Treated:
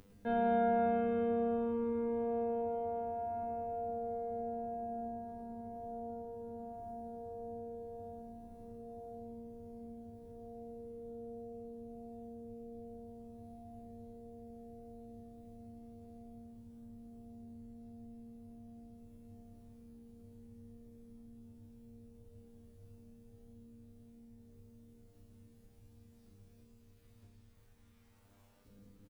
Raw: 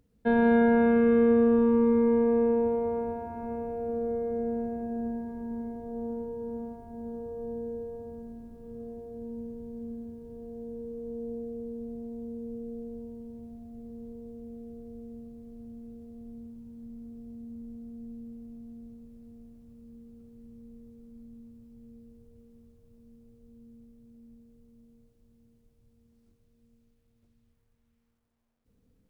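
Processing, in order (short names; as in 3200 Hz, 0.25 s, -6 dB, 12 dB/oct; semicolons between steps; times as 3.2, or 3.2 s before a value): in parallel at -1 dB: upward compressor, threshold -27 dBFS; on the sum: resonator 100 Hz, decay 0.6 s, harmonics all, mix 90%; outdoor echo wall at 18 m, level -14 dB; gain -2 dB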